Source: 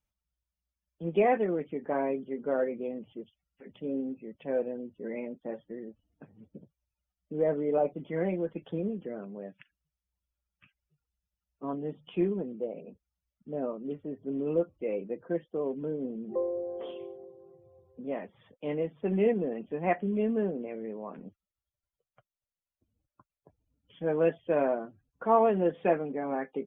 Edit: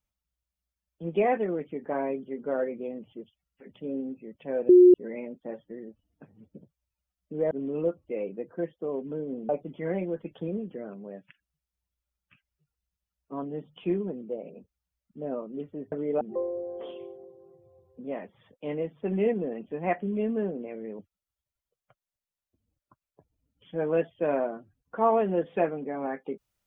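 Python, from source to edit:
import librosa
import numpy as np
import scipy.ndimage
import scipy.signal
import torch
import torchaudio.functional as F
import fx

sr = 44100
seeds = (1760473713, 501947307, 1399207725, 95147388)

y = fx.edit(x, sr, fx.bleep(start_s=4.69, length_s=0.25, hz=360.0, db=-10.5),
    fx.swap(start_s=7.51, length_s=0.29, other_s=14.23, other_length_s=1.98),
    fx.cut(start_s=20.99, length_s=0.28), tone=tone)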